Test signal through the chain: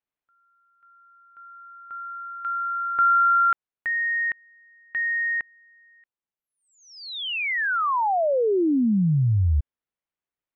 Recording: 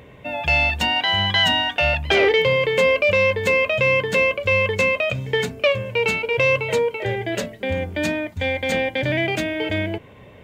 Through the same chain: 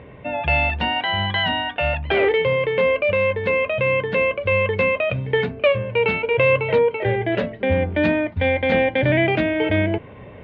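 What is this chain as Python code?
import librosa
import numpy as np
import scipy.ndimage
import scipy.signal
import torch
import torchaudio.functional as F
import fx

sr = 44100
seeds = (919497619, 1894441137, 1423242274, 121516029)

y = fx.rider(x, sr, range_db=4, speed_s=2.0)
y = scipy.signal.sosfilt(scipy.signal.bessel(6, 2200.0, 'lowpass', norm='mag', fs=sr, output='sos'), y)
y = y * librosa.db_to_amplitude(1.5)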